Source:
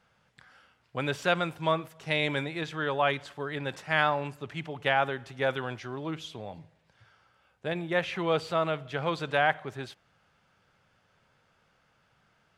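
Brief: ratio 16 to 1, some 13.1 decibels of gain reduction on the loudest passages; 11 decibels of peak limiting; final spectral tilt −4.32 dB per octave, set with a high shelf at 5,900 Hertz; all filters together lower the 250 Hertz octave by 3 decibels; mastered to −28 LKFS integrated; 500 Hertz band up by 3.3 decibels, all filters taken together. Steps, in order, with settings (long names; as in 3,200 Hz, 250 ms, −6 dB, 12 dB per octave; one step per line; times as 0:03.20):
parametric band 250 Hz −7.5 dB
parametric band 500 Hz +5.5 dB
high-shelf EQ 5,900 Hz +8.5 dB
downward compressor 16 to 1, threshold −31 dBFS
level +12 dB
brickwall limiter −15.5 dBFS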